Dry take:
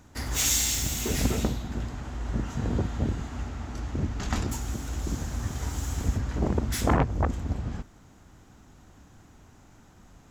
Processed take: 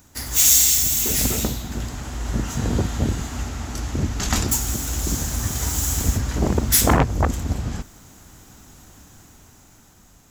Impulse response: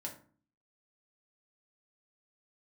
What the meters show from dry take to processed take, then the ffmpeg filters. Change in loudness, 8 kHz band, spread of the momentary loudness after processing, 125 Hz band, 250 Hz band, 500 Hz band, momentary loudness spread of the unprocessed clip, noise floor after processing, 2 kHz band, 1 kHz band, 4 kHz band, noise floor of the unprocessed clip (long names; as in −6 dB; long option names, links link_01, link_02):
+9.0 dB, +11.5 dB, 15 LU, +5.0 dB, +5.0 dB, +5.0 dB, 12 LU, −52 dBFS, +6.5 dB, +6.0 dB, +8.0 dB, −55 dBFS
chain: -af "dynaudnorm=framelen=460:gausssize=7:maxgain=7dB,aemphasis=mode=production:type=75kf,volume=-1dB"